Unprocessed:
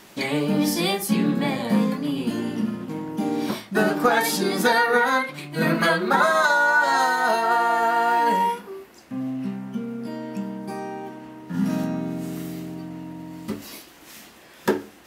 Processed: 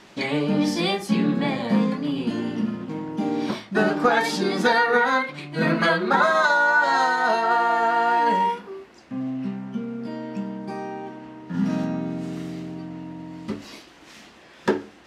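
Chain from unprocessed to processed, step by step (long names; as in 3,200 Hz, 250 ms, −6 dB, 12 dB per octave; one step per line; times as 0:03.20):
low-pass filter 5,500 Hz 12 dB per octave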